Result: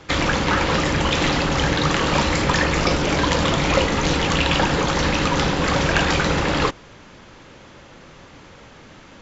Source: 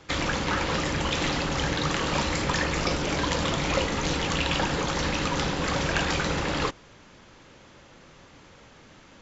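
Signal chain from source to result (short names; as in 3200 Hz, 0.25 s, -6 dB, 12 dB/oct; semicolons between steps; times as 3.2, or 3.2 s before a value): high shelf 5700 Hz -5 dB; gain +7.5 dB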